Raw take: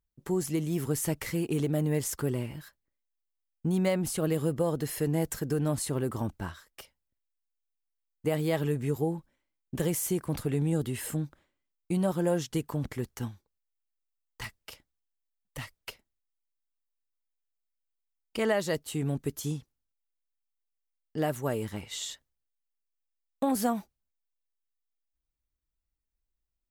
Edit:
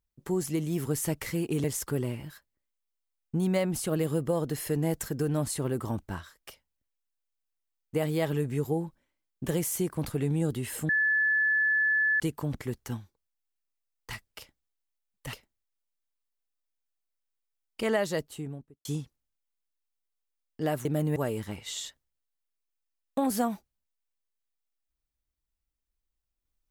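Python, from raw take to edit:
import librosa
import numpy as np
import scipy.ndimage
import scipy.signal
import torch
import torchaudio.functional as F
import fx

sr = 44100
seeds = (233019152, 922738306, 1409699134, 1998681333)

y = fx.studio_fade_out(x, sr, start_s=18.6, length_s=0.81)
y = fx.edit(y, sr, fx.move(start_s=1.64, length_s=0.31, to_s=21.41),
    fx.bleep(start_s=11.2, length_s=1.31, hz=1730.0, db=-22.0),
    fx.cut(start_s=15.64, length_s=0.25), tone=tone)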